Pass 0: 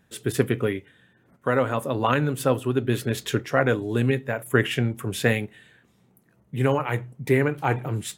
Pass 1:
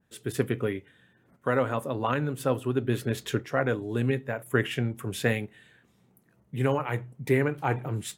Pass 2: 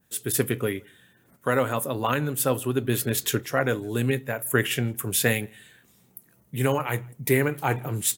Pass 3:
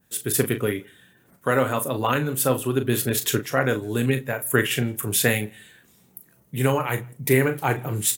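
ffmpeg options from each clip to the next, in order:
-af "dynaudnorm=f=220:g=3:m=5dB,adynamicequalizer=threshold=0.0178:dfrequency=2000:dqfactor=0.7:tfrequency=2000:tqfactor=0.7:attack=5:release=100:ratio=0.375:range=2:mode=cutabove:tftype=highshelf,volume=-7.5dB"
-filter_complex "[0:a]aemphasis=mode=production:type=75fm,asplit=2[a][b];[b]adelay=163.3,volume=-29dB,highshelf=f=4k:g=-3.67[c];[a][c]amix=inputs=2:normalize=0,volume=2.5dB"
-filter_complex "[0:a]asplit=2[a][b];[b]adelay=38,volume=-10dB[c];[a][c]amix=inputs=2:normalize=0,volume=2dB"

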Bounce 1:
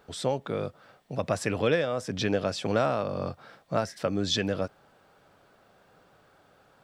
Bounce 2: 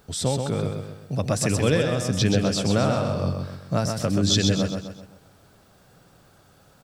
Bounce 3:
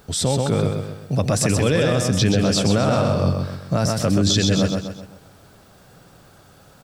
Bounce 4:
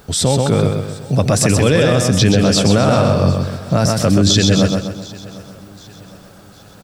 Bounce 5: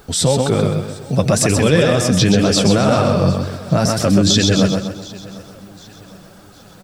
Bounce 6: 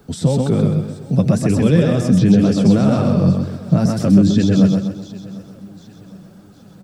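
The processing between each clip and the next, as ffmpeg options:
-filter_complex "[0:a]bass=f=250:g=11,treble=f=4k:g=12,asplit=2[a][b];[b]aecho=0:1:129|258|387|516|645:0.562|0.247|0.109|0.0479|0.0211[c];[a][c]amix=inputs=2:normalize=0"
-af "alimiter=limit=-15dB:level=0:latency=1:release=19,volume=6dB"
-af "aecho=1:1:754|1508|2262:0.0841|0.0387|0.0178,volume=5.5dB"
-af "flanger=delay=2.2:depth=4.3:regen=45:speed=2:shape=triangular,volume=3.5dB"
-filter_complex "[0:a]equalizer=f=190:t=o:w=2.2:g=13.5,acrossover=split=130|1600|1900[a][b][c][d];[d]alimiter=limit=-14.5dB:level=0:latency=1:release=94[e];[a][b][c][e]amix=inputs=4:normalize=0,volume=-9.5dB"

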